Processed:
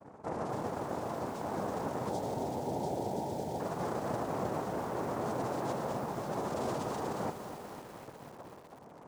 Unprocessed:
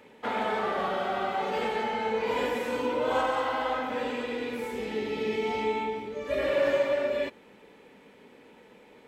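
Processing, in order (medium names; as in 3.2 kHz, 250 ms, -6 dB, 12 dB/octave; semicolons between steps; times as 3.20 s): cascade formant filter i; peaking EQ 430 Hz +10 dB 1.3 oct; valve stage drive 39 dB, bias 0.4; loudest bins only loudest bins 16; noise-vocoded speech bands 2; 2.09–3.60 s: brick-wall FIR band-stop 970–3100 Hz; on a send: echo that smears into a reverb 484 ms, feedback 44%, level -14.5 dB; on the sum: bit-crushed delay 249 ms, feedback 80%, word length 9-bit, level -10 dB; trim +6.5 dB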